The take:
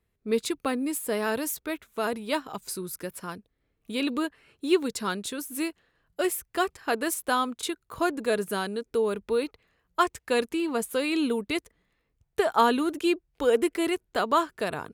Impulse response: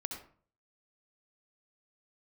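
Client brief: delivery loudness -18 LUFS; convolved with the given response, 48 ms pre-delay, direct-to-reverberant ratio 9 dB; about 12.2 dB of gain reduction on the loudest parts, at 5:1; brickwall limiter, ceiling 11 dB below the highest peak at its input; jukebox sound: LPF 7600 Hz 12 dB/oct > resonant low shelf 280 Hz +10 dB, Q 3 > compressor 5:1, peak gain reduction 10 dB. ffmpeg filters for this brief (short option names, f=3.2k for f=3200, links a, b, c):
-filter_complex "[0:a]acompressor=threshold=-31dB:ratio=5,alimiter=level_in=5.5dB:limit=-24dB:level=0:latency=1,volume=-5.5dB,asplit=2[a][b];[1:a]atrim=start_sample=2205,adelay=48[c];[b][c]afir=irnorm=-1:irlink=0,volume=-9dB[d];[a][d]amix=inputs=2:normalize=0,lowpass=7.6k,lowshelf=f=280:t=q:w=3:g=10,acompressor=threshold=-31dB:ratio=5,volume=19.5dB"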